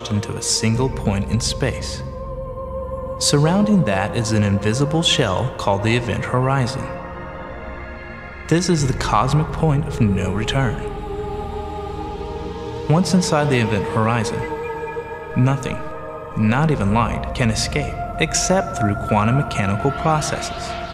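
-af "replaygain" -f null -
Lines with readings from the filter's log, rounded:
track_gain = +0.9 dB
track_peak = 0.469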